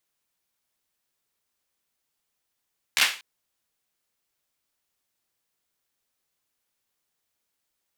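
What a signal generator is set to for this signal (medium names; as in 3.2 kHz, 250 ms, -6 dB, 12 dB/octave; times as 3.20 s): hand clap length 0.24 s, apart 14 ms, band 2.4 kHz, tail 0.35 s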